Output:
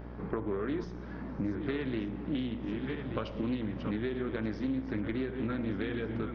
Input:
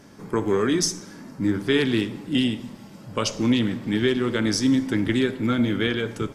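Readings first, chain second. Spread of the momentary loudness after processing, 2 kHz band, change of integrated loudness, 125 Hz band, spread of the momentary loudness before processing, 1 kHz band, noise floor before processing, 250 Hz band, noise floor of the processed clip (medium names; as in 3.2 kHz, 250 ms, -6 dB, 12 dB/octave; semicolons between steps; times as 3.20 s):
3 LU, -13.5 dB, -12.0 dB, -9.0 dB, 8 LU, -10.5 dB, -45 dBFS, -11.0 dB, -42 dBFS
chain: backward echo that repeats 590 ms, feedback 50%, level -11 dB; hum notches 60/120/180/240 Hz; compression 6:1, threshold -31 dBFS, peak gain reduction 15 dB; mains buzz 60 Hz, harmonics 32, -45 dBFS -6 dB/octave; Gaussian low-pass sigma 3 samples; loudspeaker Doppler distortion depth 0.2 ms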